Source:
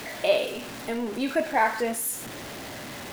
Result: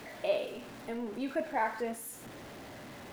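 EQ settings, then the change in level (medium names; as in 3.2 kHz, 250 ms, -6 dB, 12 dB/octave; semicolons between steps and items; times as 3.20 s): treble shelf 2.1 kHz -7.5 dB; -7.5 dB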